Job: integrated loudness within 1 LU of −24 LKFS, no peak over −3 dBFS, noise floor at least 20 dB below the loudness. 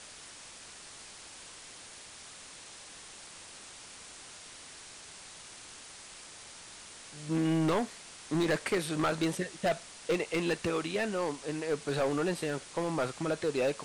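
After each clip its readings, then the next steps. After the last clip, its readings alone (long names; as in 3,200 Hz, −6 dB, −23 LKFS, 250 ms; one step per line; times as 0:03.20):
share of clipped samples 1.3%; peaks flattened at −24.0 dBFS; background noise floor −50 dBFS; target noise floor −52 dBFS; integrated loudness −32.0 LKFS; sample peak −24.0 dBFS; target loudness −24.0 LKFS
→ clipped peaks rebuilt −24 dBFS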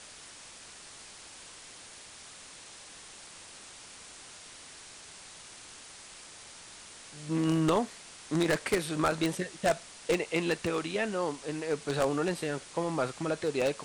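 share of clipped samples 0.0%; background noise floor −50 dBFS; target noise floor −51 dBFS
→ broadband denoise 6 dB, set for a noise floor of −50 dBFS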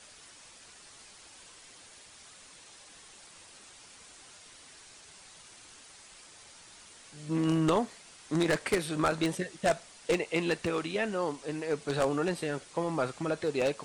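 background noise floor −54 dBFS; integrated loudness −31.0 LKFS; sample peak −15.0 dBFS; target loudness −24.0 LKFS
→ level +7 dB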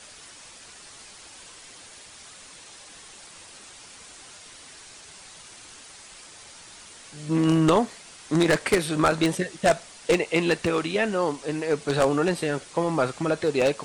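integrated loudness −24.0 LKFS; sample peak −8.0 dBFS; background noise floor −47 dBFS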